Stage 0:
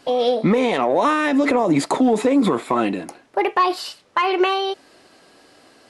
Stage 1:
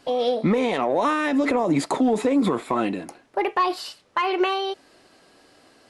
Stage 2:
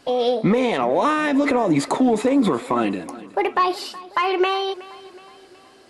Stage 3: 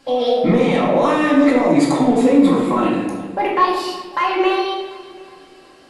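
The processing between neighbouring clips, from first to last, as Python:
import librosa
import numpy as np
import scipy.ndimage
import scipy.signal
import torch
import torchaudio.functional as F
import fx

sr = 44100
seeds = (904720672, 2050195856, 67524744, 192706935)

y1 = fx.low_shelf(x, sr, hz=82.0, db=6.0)
y1 = F.gain(torch.from_numpy(y1), -4.0).numpy()
y2 = fx.echo_feedback(y1, sr, ms=370, feedback_pct=50, wet_db=-19.0)
y2 = F.gain(torch.from_numpy(y2), 2.5).numpy()
y3 = fx.room_shoebox(y2, sr, seeds[0], volume_m3=560.0, walls='mixed', distance_m=2.2)
y3 = F.gain(torch.from_numpy(y3), -2.5).numpy()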